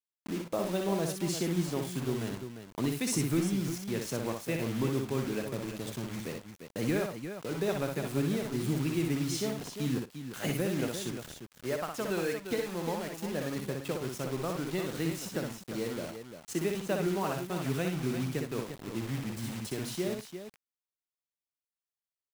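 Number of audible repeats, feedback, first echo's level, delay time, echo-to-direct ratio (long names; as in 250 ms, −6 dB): 3, repeats not evenly spaced, −4.5 dB, 61 ms, −3.0 dB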